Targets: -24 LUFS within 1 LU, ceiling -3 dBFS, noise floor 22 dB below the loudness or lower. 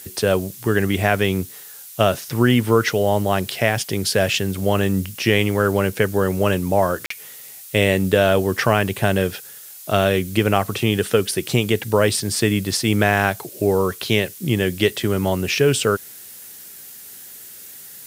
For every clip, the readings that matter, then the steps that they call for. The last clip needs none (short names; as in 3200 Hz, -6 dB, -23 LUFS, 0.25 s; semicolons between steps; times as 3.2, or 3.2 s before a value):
dropouts 1; longest dropout 44 ms; noise floor -40 dBFS; noise floor target -42 dBFS; loudness -19.5 LUFS; peak -1.5 dBFS; loudness target -24.0 LUFS
-> interpolate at 7.06, 44 ms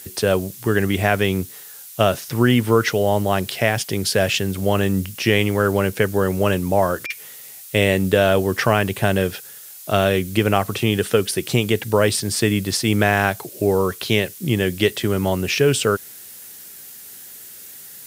dropouts 0; noise floor -40 dBFS; noise floor target -42 dBFS
-> denoiser 6 dB, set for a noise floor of -40 dBFS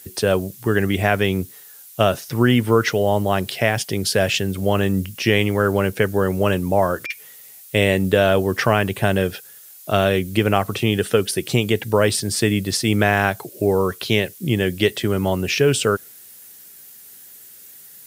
noise floor -43 dBFS; loudness -19.5 LUFS; peak -1.5 dBFS; loudness target -24.0 LUFS
-> gain -4.5 dB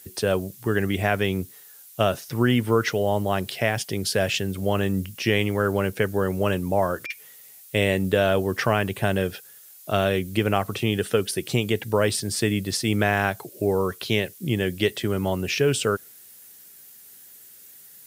loudness -24.0 LUFS; peak -6.0 dBFS; noise floor -48 dBFS